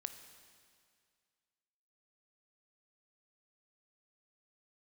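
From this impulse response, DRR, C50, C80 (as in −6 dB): 8.5 dB, 9.5 dB, 10.5 dB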